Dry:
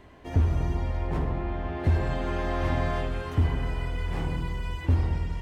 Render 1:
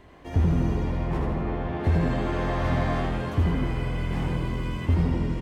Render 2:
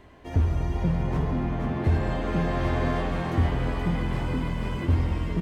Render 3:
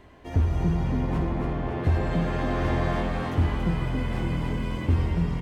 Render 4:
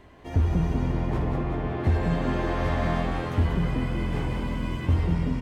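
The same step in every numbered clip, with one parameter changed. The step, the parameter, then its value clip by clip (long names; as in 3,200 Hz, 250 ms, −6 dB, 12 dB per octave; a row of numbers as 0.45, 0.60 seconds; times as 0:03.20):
echo with shifted repeats, delay time: 81, 477, 280, 187 milliseconds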